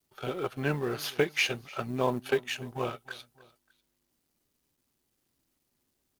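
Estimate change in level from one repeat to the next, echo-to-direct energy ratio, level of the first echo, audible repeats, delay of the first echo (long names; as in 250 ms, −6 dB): −5.5 dB, −20.5 dB, −21.5 dB, 2, 297 ms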